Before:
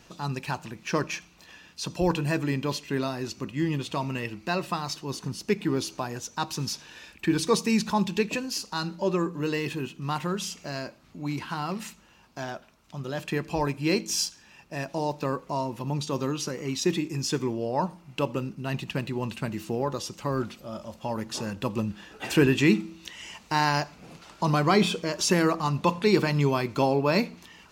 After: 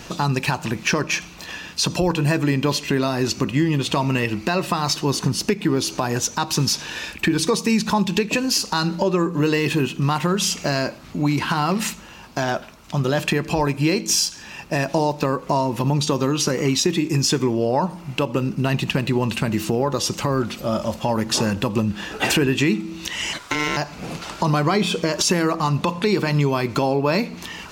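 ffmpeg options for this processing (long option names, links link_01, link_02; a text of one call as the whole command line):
ffmpeg -i in.wav -filter_complex "[0:a]asettb=1/sr,asplit=3[link_01][link_02][link_03];[link_01]atrim=end=23.334[link_04];[link_02]atrim=start=23.33:end=23.77,asetpts=PTS-STARTPTS,afade=type=in:duration=0.004:curve=qsin,afade=type=out:start_time=0.436:duration=0.004:curve=qsin,aeval=exprs='val(0)*sin(2*PI*1200*n/s)':channel_layout=same[link_05];[link_03]atrim=start=23.766[link_06];[link_04][link_05]acrossfade=duration=0.004:curve1=hsin:curve2=qsin[link_07];[link_07][link_06]acrossfade=duration=0.004:curve1=qsin:curve2=hsin,acompressor=threshold=-32dB:ratio=6,alimiter=level_in=23.5dB:limit=-1dB:release=50:level=0:latency=1,volume=-7.5dB" out.wav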